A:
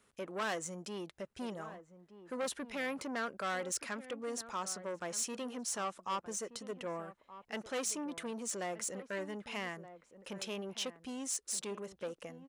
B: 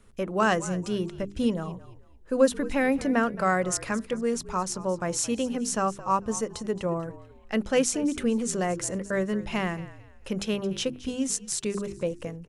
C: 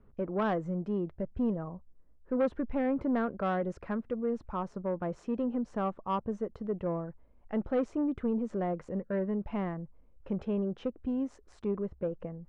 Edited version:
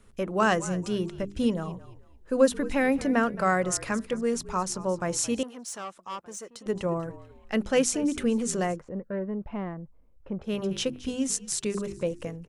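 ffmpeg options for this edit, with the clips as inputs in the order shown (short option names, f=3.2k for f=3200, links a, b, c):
-filter_complex "[1:a]asplit=3[a][b][c];[a]atrim=end=5.432[d];[0:a]atrim=start=5.428:end=6.662[e];[b]atrim=start=6.658:end=8.82[f];[2:a]atrim=start=8.66:end=10.59[g];[c]atrim=start=10.43[h];[d][e]acrossfade=d=0.004:c1=hsin:c2=hsin[i];[i][f]acrossfade=d=0.004:c1=hsin:c2=hsin[j];[j][g]acrossfade=d=0.16:c1=tri:c2=tri[k];[k][h]acrossfade=d=0.16:c1=tri:c2=tri"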